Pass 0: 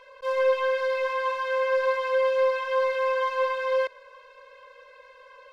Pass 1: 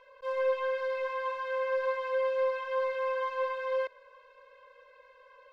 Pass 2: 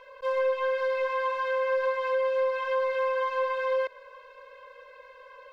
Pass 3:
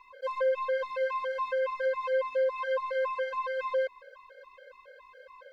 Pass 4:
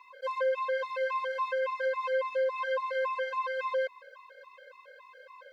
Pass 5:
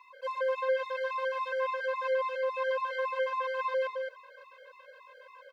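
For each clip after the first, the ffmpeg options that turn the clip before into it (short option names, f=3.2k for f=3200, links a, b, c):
-af "highshelf=f=4.1k:g=-9,volume=-6dB"
-af "acompressor=threshold=-33dB:ratio=2.5,volume=7.5dB"
-af "afftfilt=real='re*gt(sin(2*PI*3.6*pts/sr)*(1-2*mod(floor(b*sr/1024/420),2)),0)':imag='im*gt(sin(2*PI*3.6*pts/sr)*(1-2*mod(floor(b*sr/1024/420),2)),0)':win_size=1024:overlap=0.75"
-af "highpass=f=610:p=1,volume=2dB"
-af "bandreject=f=50:t=h:w=6,bandreject=f=100:t=h:w=6,bandreject=f=150:t=h:w=6,bandreject=f=200:t=h:w=6,bandreject=f=250:t=h:w=6,bandreject=f=300:t=h:w=6,bandreject=f=350:t=h:w=6,bandreject=f=400:t=h:w=6,bandreject=f=450:t=h:w=6,aecho=1:1:216:0.596,volume=-1.5dB"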